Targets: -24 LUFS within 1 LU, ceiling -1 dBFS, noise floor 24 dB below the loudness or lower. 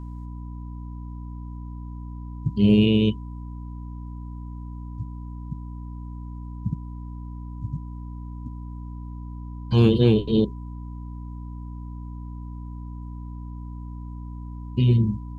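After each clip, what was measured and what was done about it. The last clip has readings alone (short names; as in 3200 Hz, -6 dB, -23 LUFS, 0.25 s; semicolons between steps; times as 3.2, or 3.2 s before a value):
hum 60 Hz; harmonics up to 300 Hz; hum level -32 dBFS; steady tone 990 Hz; tone level -50 dBFS; loudness -23.0 LUFS; peak -5.5 dBFS; loudness target -24.0 LUFS
-> de-hum 60 Hz, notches 5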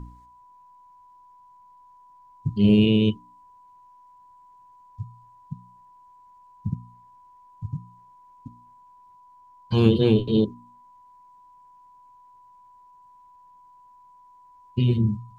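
hum none; steady tone 990 Hz; tone level -50 dBFS
-> notch 990 Hz, Q 30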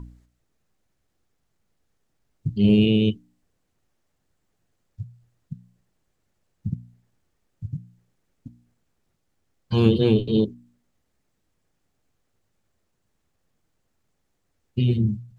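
steady tone none; loudness -21.5 LUFS; peak -3.5 dBFS; loudness target -24.0 LUFS
-> gain -2.5 dB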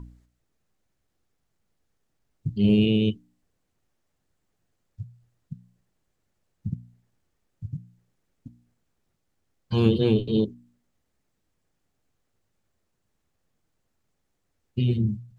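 loudness -24.0 LUFS; peak -6.0 dBFS; noise floor -76 dBFS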